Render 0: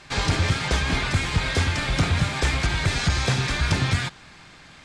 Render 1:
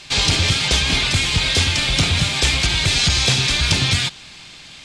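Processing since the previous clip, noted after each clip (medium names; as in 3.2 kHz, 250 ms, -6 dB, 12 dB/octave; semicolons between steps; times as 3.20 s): resonant high shelf 2.2 kHz +8.5 dB, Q 1.5; trim +2 dB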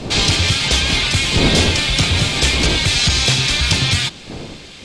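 wind noise 360 Hz -27 dBFS; trim +1.5 dB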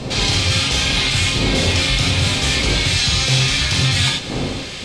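reverse; compression 6:1, threshold -23 dBFS, peak gain reduction 13 dB; reverse; gated-style reverb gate 120 ms flat, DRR -1.5 dB; trim +4.5 dB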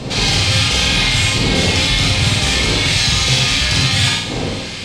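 Chebyshev shaper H 6 -32 dB, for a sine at -3.5 dBFS; flutter echo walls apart 8.5 m, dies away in 0.59 s; trim +1 dB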